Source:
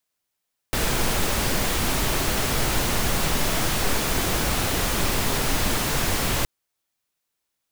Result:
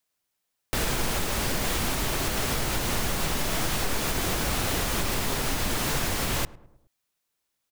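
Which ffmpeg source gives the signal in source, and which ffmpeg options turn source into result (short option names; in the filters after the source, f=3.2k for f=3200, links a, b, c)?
-f lavfi -i "anoisesrc=c=pink:a=0.385:d=5.72:r=44100:seed=1"
-filter_complex "[0:a]alimiter=limit=-17dB:level=0:latency=1:release=241,asplit=2[a][b];[b]adelay=105,lowpass=f=1.2k:p=1,volume=-19dB,asplit=2[c][d];[d]adelay=105,lowpass=f=1.2k:p=1,volume=0.54,asplit=2[e][f];[f]adelay=105,lowpass=f=1.2k:p=1,volume=0.54,asplit=2[g][h];[h]adelay=105,lowpass=f=1.2k:p=1,volume=0.54[i];[a][c][e][g][i]amix=inputs=5:normalize=0"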